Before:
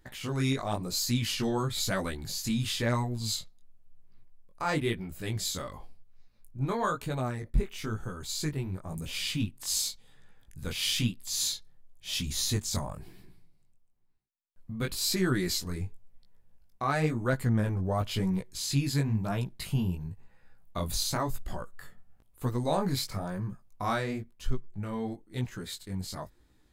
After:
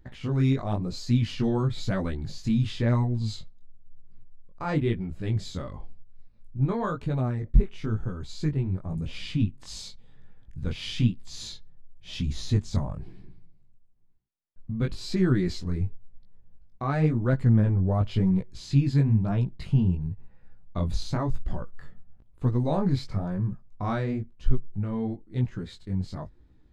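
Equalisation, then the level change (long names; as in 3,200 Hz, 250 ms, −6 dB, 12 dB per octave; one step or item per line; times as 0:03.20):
head-to-tape spacing loss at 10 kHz 28 dB
low-shelf EQ 400 Hz +10 dB
high-shelf EQ 2,800 Hz +8.5 dB
−1.5 dB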